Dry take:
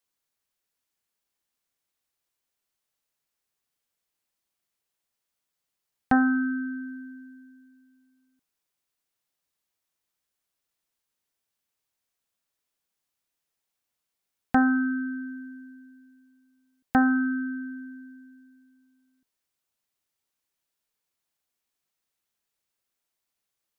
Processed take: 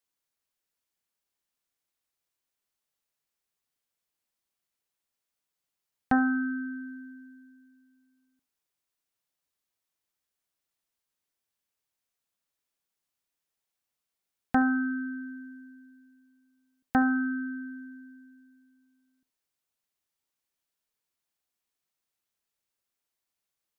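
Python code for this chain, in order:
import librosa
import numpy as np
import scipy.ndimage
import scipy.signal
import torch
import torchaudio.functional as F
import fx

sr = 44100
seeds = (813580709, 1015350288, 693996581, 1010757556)

y = x + 10.0 ** (-21.5 / 20.0) * np.pad(x, (int(72 * sr / 1000.0), 0))[:len(x)]
y = y * 10.0 ** (-3.0 / 20.0)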